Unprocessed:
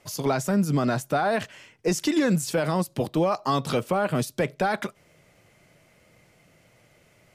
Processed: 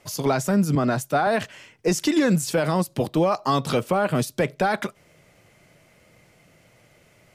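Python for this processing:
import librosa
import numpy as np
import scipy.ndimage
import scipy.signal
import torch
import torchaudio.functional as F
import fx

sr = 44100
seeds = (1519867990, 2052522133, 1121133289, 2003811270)

y = fx.band_widen(x, sr, depth_pct=100, at=(0.75, 1.27))
y = y * librosa.db_to_amplitude(2.5)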